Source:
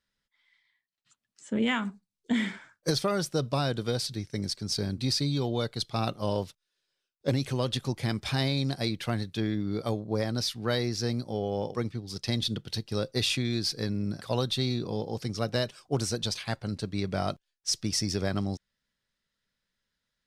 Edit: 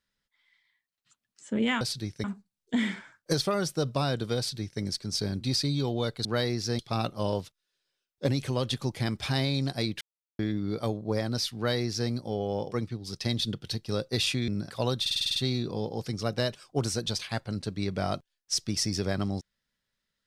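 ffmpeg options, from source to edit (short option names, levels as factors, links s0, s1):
-filter_complex "[0:a]asplit=15[s0][s1][s2][s3][s4][s5][s6][s7][s8][s9][s10][s11][s12][s13][s14];[s0]atrim=end=1.812[s15];[s1]atrim=start=3.948:end=4.382[s16];[s2]atrim=start=1.808:end=5.822[s17];[s3]atrim=start=10.588:end=11.132[s18];[s4]atrim=start=5.818:end=9.04,asetpts=PTS-STARTPTS,afade=t=out:st=3.218:d=0.004:c=hsin[s19];[s5]atrim=start=9.04:end=9.42,asetpts=PTS-STARTPTS,volume=0[s20];[s6]atrim=start=9.42:end=13.512,asetpts=PTS-STARTPTS,afade=t=in:d=0.004:c=hsin[s21];[s7]atrim=start=13.988:end=14.572[s22];[s8]atrim=start=14.518:end=14.572[s23];[s9]atrim=start=14.518:end=14.572[s24];[s10]atrim=start=14.518:end=14.572[s25];[s11]atrim=start=14.518:end=14.572[s26];[s12]atrim=start=14.518:end=14.572[s27];[s13]atrim=start=14.518:end=14.572[s28];[s14]atrim=start=14.518[s29];[s15][s16]acrossfade=d=0.004:c1=hsin:c2=hsin[s30];[s30][s17]acrossfade=d=0.004:c1=hsin:c2=hsin[s31];[s31][s18]acrossfade=d=0.004:c1=hsin:c2=hsin[s32];[s19][s20][s21]concat=n=3:v=0:a=1[s33];[s32][s33]acrossfade=d=0.004:c1=hsin:c2=hsin[s34];[s34][s22]acrossfade=d=0.004:c1=hsin:c2=hsin[s35];[s35][s23]acrossfade=d=0.004:c1=hsin:c2=hsin[s36];[s36][s24]acrossfade=d=0.004:c1=hsin:c2=hsin[s37];[s37][s25]acrossfade=d=0.004:c1=hsin:c2=hsin[s38];[s38][s26]acrossfade=d=0.004:c1=hsin:c2=hsin[s39];[s39][s27]acrossfade=d=0.004:c1=hsin:c2=hsin[s40];[s40][s28]acrossfade=d=0.004:c1=hsin:c2=hsin[s41];[s41][s29]acrossfade=d=0.004:c1=hsin:c2=hsin"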